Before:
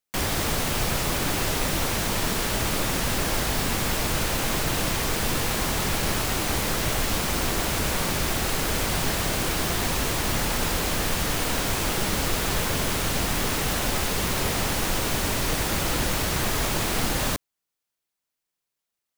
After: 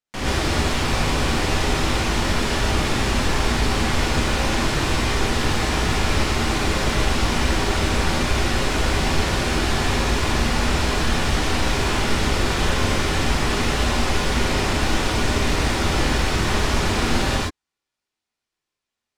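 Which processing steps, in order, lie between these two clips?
high-frequency loss of the air 74 metres
reverb whose tail is shaped and stops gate 150 ms rising, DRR −6.5 dB
level −2 dB

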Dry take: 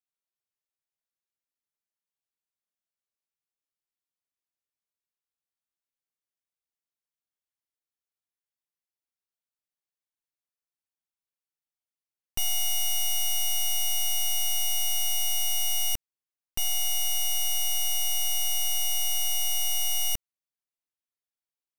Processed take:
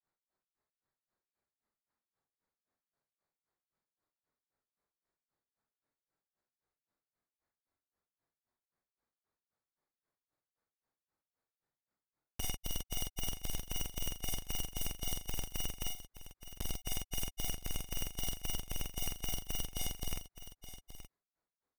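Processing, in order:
adaptive Wiener filter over 15 samples
brickwall limiter −36.5 dBFS, peak gain reduction 12 dB
granular cloud 160 ms, grains 3.8 per second, pitch spread up and down by 0 semitones
wrap-around overflow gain 46 dB
double-tracking delay 46 ms −3 dB
on a send: single-tap delay 873 ms −13 dB
on the sum: level +14 dB

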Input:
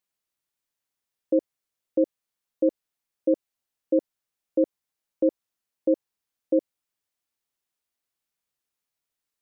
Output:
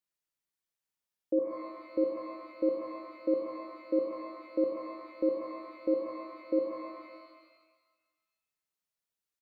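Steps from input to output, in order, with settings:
far-end echo of a speakerphone 190 ms, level −27 dB
reverb with rising layers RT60 1.4 s, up +12 semitones, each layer −8 dB, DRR 2 dB
level −7.5 dB

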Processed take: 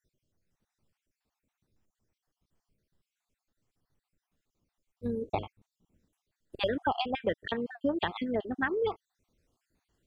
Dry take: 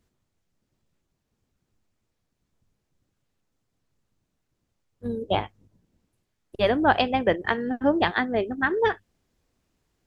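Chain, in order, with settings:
time-frequency cells dropped at random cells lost 51%
downward compressor 2.5 to 1, threshold −27 dBFS, peak gain reduction 8.5 dB
level −1.5 dB

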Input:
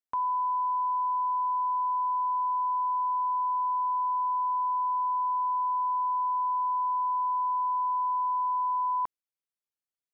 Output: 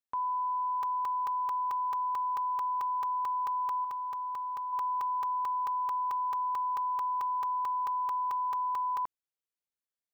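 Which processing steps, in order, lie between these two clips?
0:03.84–0:04.73: dynamic equaliser 790 Hz, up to −5 dB, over −41 dBFS, Q 0.8
regular buffer underruns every 0.22 s, samples 128, zero, from 0:00.83
level −3.5 dB

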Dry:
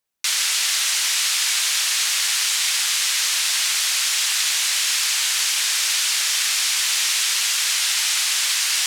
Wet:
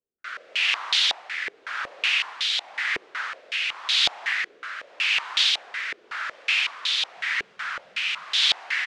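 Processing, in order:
0:07.17–0:08.24: low shelf with overshoot 240 Hz +9.5 dB, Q 3
rotating-speaker cabinet horn 0.9 Hz
on a send: echo with shifted repeats 225 ms, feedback 52%, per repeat −98 Hz, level −16.5 dB
on the sum: low-pass on a step sequencer 5.4 Hz 410–3,600 Hz
level −2.5 dB

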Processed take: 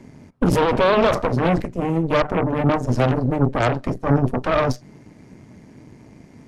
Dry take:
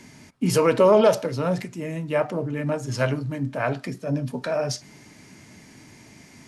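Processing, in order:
tilt shelving filter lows +9 dB, about 1,300 Hz
brickwall limiter −10.5 dBFS, peak gain reduction 9.5 dB
harmonic generator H 2 −6 dB, 3 −19 dB, 6 −14 dB, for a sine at −10.5 dBFS

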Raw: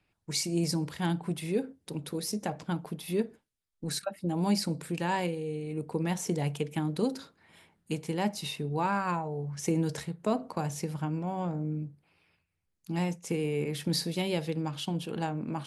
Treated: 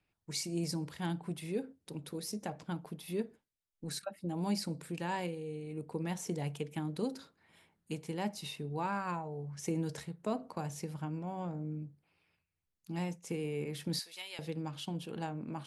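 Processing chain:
0:13.99–0:14.39: high-pass filter 1,300 Hz 12 dB per octave
level −6.5 dB

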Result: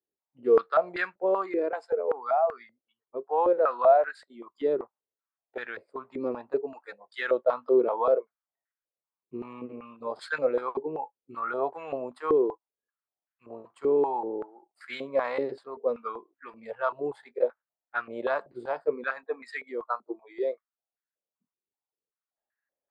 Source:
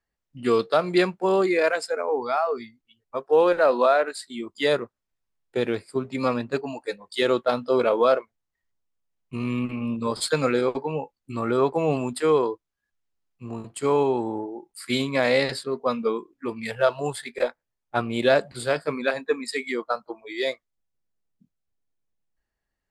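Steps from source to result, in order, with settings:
band-pass on a step sequencer 5.2 Hz 370–1,600 Hz
level +3 dB

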